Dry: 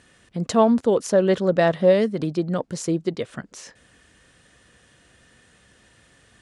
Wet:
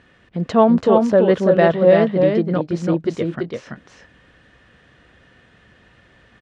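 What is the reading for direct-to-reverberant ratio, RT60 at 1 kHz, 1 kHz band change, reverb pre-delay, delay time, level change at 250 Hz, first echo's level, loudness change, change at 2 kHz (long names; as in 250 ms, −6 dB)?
no reverb audible, no reverb audible, +5.0 dB, no reverb audible, 335 ms, +5.0 dB, −4.0 dB, +4.5 dB, +4.0 dB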